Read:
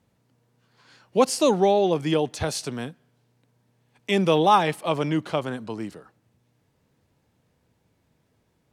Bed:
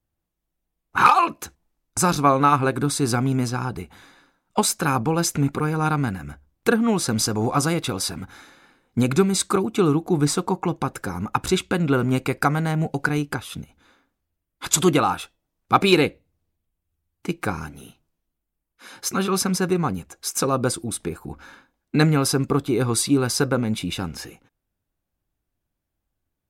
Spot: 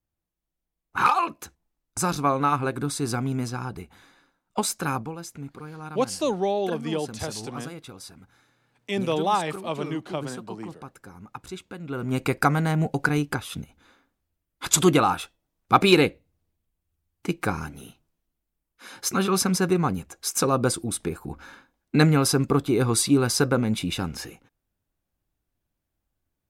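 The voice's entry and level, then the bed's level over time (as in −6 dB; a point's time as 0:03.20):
4.80 s, −5.5 dB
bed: 0:04.94 −5.5 dB
0:05.18 −16.5 dB
0:11.81 −16.5 dB
0:12.25 −0.5 dB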